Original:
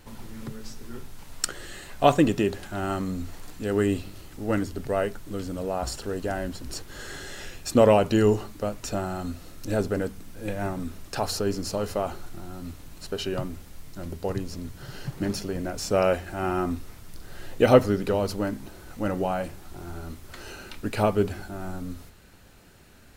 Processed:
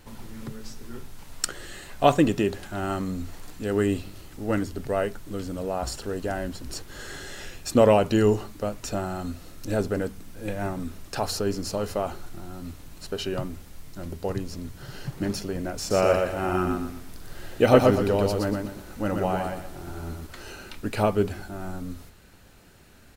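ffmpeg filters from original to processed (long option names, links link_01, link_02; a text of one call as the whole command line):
ffmpeg -i in.wav -filter_complex "[0:a]asplit=3[link_01][link_02][link_03];[link_01]afade=type=out:start_time=15.89:duration=0.02[link_04];[link_02]aecho=1:1:120|240|360|480:0.668|0.221|0.0728|0.024,afade=type=in:start_time=15.89:duration=0.02,afade=type=out:start_time=20.26:duration=0.02[link_05];[link_03]afade=type=in:start_time=20.26:duration=0.02[link_06];[link_04][link_05][link_06]amix=inputs=3:normalize=0" out.wav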